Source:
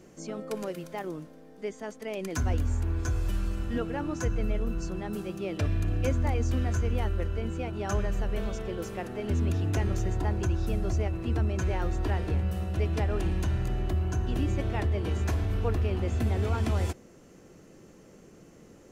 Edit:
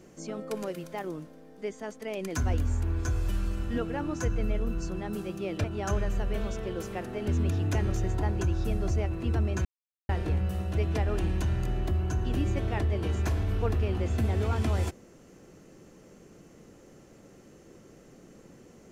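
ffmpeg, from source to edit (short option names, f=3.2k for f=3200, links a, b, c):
-filter_complex "[0:a]asplit=4[a][b][c][d];[a]atrim=end=5.642[e];[b]atrim=start=7.658:end=11.67,asetpts=PTS-STARTPTS,afade=t=out:st=4.008:d=0.004:c=hsin[f];[c]atrim=start=11.67:end=12.11,asetpts=PTS-STARTPTS,volume=0[g];[d]atrim=start=12.11,asetpts=PTS-STARTPTS,afade=t=in:d=0.004:c=hsin[h];[f][g][h]concat=n=3:v=0:a=1[i];[e][i]acrossfade=d=0.004:c1=hsin:c2=hsin"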